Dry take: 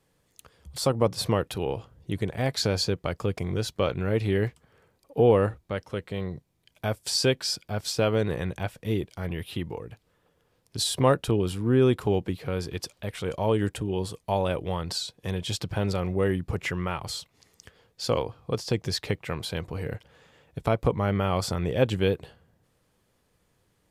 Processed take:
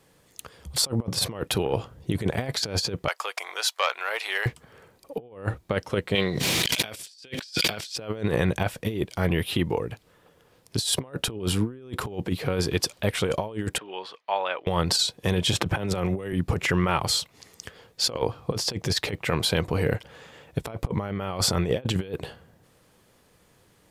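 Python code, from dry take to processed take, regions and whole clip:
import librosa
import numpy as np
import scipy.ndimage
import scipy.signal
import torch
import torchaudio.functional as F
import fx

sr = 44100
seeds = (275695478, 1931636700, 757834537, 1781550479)

y = fx.chain(x, sr, fx.highpass(hz=800.0, slope=24),
    fx.transformer_sat(knee_hz=1300.0), at=(3.08, 4.46))
y = fx.chain(y, sr, fx.weighting(curve='D'),
    fx.pre_swell(db_per_s=28.0), at=(6.15, 7.96))
y = fx.chain(y, sr, fx.highpass(hz=1100.0, slope=12),
    fx.air_absorb(metres=300.0), at=(13.78, 14.67))
y = fx.chain(y, sr, fx.peak_eq(hz=4600.0, db=-9.5, octaves=0.28),
    fx.band_squash(depth_pct=70), at=(15.53, 16.33))
y = fx.low_shelf(y, sr, hz=99.0, db=-7.0)
y = fx.over_compress(y, sr, threshold_db=-31.0, ratio=-0.5)
y = y * librosa.db_to_amplitude(5.0)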